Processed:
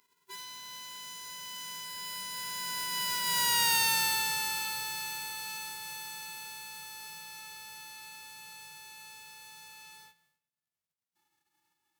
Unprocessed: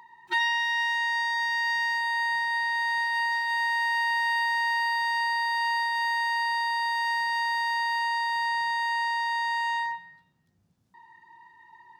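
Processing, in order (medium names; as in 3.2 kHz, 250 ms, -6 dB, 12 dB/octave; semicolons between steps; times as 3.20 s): formants flattened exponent 0.1; Doppler pass-by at 3.67 s, 24 m/s, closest 9.3 m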